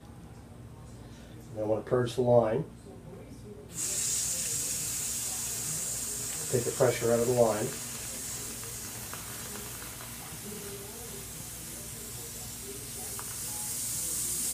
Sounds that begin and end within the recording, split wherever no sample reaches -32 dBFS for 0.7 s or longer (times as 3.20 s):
1.56–2.62 s